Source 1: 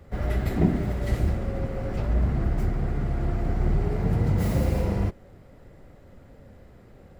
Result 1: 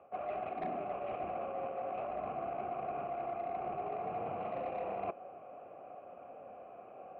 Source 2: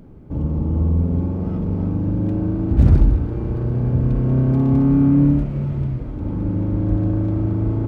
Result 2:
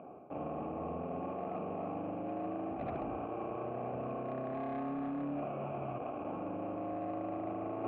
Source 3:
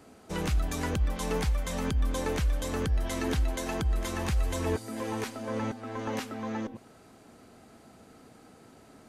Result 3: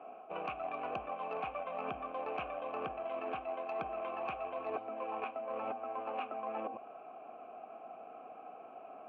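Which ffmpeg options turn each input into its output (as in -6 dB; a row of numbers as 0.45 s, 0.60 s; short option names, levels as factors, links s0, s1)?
-filter_complex "[0:a]asplit=2[s0][s1];[s1]aeval=exprs='val(0)*gte(abs(val(0)),0.0447)':c=same,volume=0.335[s2];[s0][s2]amix=inputs=2:normalize=0,asplit=3[s3][s4][s5];[s3]bandpass=f=730:t=q:w=8,volume=1[s6];[s4]bandpass=f=1090:t=q:w=8,volume=0.501[s7];[s5]bandpass=f=2440:t=q:w=8,volume=0.355[s8];[s6][s7][s8]amix=inputs=3:normalize=0,adynamicsmooth=sensitivity=2:basefreq=1700,highpass=f=250:p=1,highshelf=f=3700:t=q:w=3:g=-10.5,aeval=exprs='0.0531*sin(PI/2*1.58*val(0)/0.0531)':c=same,areverse,acompressor=threshold=0.00562:ratio=10,areverse,volume=2.82"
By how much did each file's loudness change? -13.0 LU, -20.0 LU, -9.5 LU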